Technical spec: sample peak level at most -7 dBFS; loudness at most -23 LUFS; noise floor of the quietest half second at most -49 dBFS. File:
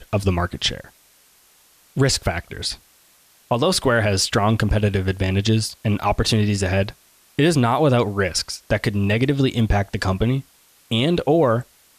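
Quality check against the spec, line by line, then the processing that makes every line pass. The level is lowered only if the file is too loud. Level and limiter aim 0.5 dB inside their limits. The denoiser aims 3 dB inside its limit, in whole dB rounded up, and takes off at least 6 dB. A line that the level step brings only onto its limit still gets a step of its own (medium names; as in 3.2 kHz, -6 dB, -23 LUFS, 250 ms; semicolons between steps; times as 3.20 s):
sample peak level -8.0 dBFS: pass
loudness -20.5 LUFS: fail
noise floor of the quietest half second -55 dBFS: pass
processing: trim -3 dB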